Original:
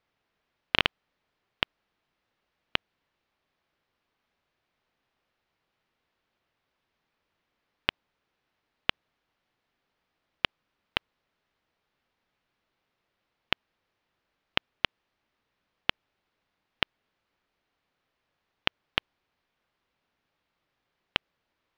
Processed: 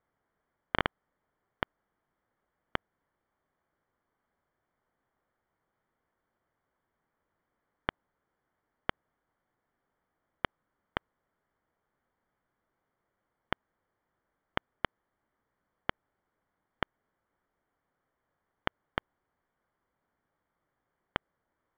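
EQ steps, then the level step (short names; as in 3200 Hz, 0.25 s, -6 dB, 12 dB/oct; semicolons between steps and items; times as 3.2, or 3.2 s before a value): polynomial smoothing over 41 samples; 0.0 dB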